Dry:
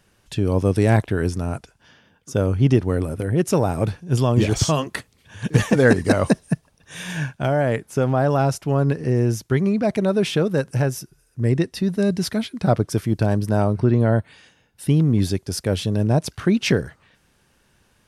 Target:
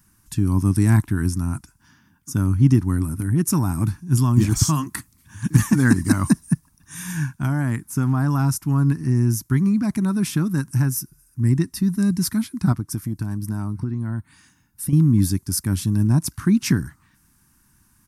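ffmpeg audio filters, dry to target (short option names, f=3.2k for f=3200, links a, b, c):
-filter_complex "[0:a]firequalizer=gain_entry='entry(300,0);entry(480,-28);entry(980,-2);entry(3100,-13);entry(5400,-1);entry(12000,10)':delay=0.05:min_phase=1,asettb=1/sr,asplit=3[a][b][c];[a]atrim=end=12.724[d];[b]atrim=start=12.72:end=14.93,asetpts=PTS-STARTPTS,afade=t=in:d=0.004:c=qsin,afade=t=out:st=2.206:d=0.004:c=qsin,acompressor=threshold=-24dB:ratio=12[e];[c]atrim=start=14.926[f];[d][e]acrossfade=d=0.004:c1=hsin:c2=qsin[g];[g][f]acrossfade=d=0.004:c1=qsin:c2=hsin,volume=2dB"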